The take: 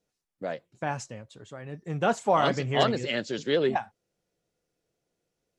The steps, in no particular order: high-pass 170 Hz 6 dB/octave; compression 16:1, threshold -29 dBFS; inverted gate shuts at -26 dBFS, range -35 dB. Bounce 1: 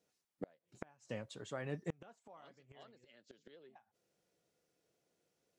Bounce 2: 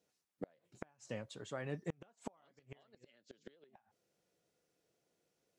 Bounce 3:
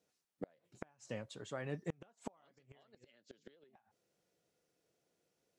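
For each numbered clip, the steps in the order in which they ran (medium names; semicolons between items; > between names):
high-pass > inverted gate > compression; compression > high-pass > inverted gate; high-pass > compression > inverted gate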